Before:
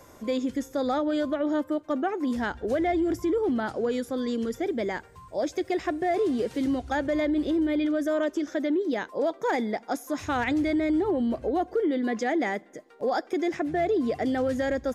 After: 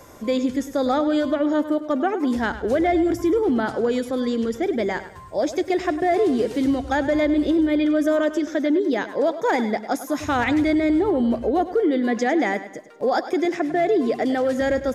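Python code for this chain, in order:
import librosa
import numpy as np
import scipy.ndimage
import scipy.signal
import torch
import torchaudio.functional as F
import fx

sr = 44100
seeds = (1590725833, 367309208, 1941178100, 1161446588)

y = fx.high_shelf(x, sr, hz=8700.0, db=-6.0, at=(4.04, 4.71))
y = fx.highpass(y, sr, hz=200.0, slope=12, at=(13.45, 14.61))
y = fx.echo_feedback(y, sr, ms=102, feedback_pct=38, wet_db=-13)
y = y * 10.0 ** (5.5 / 20.0)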